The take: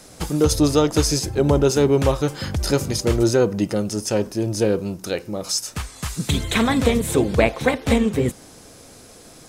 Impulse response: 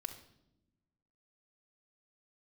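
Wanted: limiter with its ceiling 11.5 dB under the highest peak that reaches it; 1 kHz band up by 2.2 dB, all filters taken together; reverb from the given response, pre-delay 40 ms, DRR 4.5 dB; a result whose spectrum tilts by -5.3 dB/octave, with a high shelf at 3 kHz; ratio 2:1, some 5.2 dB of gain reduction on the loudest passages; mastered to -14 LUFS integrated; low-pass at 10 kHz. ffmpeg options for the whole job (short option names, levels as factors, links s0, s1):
-filter_complex "[0:a]lowpass=10000,equalizer=f=1000:t=o:g=3.5,highshelf=f=3000:g=-4.5,acompressor=threshold=0.0891:ratio=2,alimiter=limit=0.106:level=0:latency=1,asplit=2[s0][s1];[1:a]atrim=start_sample=2205,adelay=40[s2];[s1][s2]afir=irnorm=-1:irlink=0,volume=0.75[s3];[s0][s3]amix=inputs=2:normalize=0,volume=4.73"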